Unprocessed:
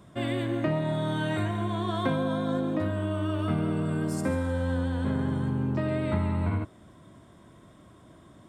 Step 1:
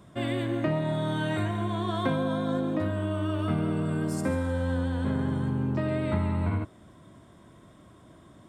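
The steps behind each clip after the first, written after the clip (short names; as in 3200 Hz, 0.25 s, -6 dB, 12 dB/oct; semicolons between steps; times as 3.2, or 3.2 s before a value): nothing audible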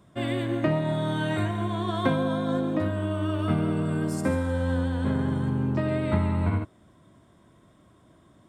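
upward expander 1.5:1, over -40 dBFS; gain +4 dB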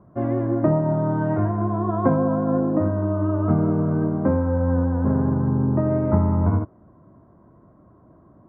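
LPF 1200 Hz 24 dB/oct; gain +5.5 dB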